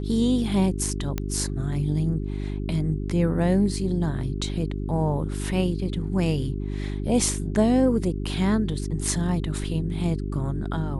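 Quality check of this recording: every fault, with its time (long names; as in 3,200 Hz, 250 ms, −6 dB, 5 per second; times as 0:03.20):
mains hum 50 Hz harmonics 8 −29 dBFS
0:01.18: click −13 dBFS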